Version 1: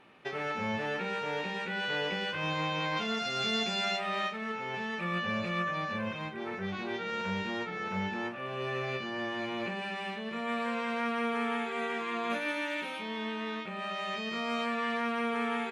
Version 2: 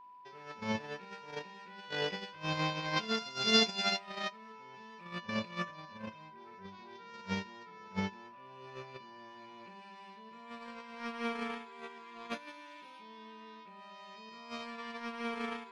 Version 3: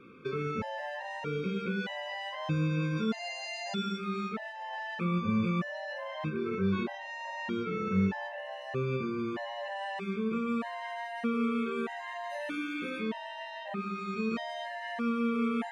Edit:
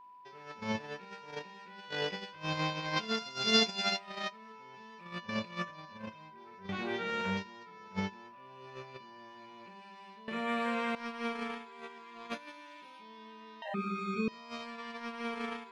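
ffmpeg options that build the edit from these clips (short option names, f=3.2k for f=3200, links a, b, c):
-filter_complex "[0:a]asplit=2[a][b];[1:a]asplit=4[c][d][e][f];[c]atrim=end=6.692[g];[a]atrim=start=6.688:end=7.372[h];[d]atrim=start=7.368:end=10.282[i];[b]atrim=start=10.278:end=10.952[j];[e]atrim=start=10.948:end=13.622[k];[2:a]atrim=start=13.618:end=14.282[l];[f]atrim=start=14.278[m];[g][h]acrossfade=d=0.004:c1=hsin:c2=hsin[n];[n][i]acrossfade=d=0.004:c1=hsin:c2=hsin[o];[o][j]acrossfade=d=0.004:c1=hsin:c2=hsin[p];[p][k]acrossfade=d=0.004:c1=hsin:c2=hsin[q];[q][l]acrossfade=d=0.004:c1=hsin:c2=hsin[r];[r][m]acrossfade=d=0.004:c1=hsin:c2=hsin"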